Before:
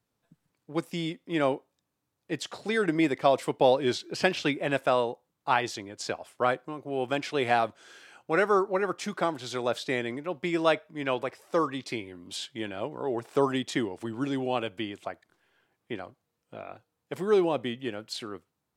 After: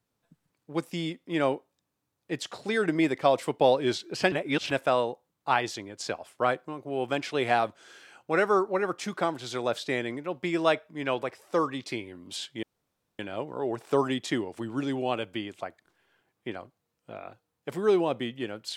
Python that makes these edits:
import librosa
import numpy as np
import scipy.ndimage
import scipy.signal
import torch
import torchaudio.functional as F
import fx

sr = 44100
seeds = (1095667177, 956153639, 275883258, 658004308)

y = fx.edit(x, sr, fx.reverse_span(start_s=4.32, length_s=0.39),
    fx.insert_room_tone(at_s=12.63, length_s=0.56), tone=tone)